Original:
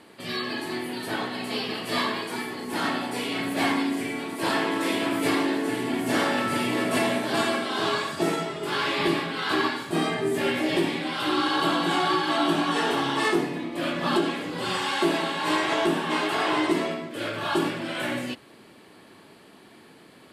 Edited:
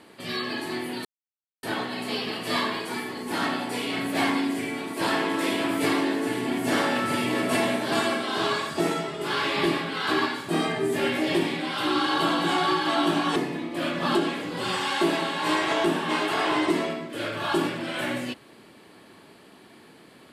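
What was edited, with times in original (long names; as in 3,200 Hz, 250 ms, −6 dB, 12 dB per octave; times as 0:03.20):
0:01.05: splice in silence 0.58 s
0:12.78–0:13.37: remove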